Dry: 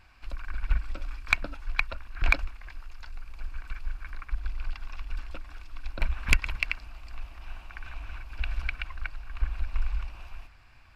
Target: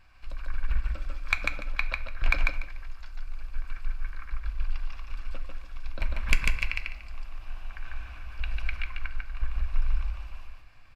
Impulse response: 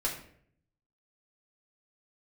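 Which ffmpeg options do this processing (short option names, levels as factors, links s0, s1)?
-filter_complex "[0:a]aecho=1:1:146|292|438:0.708|0.142|0.0283,asplit=2[s0][s1];[1:a]atrim=start_sample=2205[s2];[s1][s2]afir=irnorm=-1:irlink=0,volume=0.282[s3];[s0][s3]amix=inputs=2:normalize=0,volume=0.562"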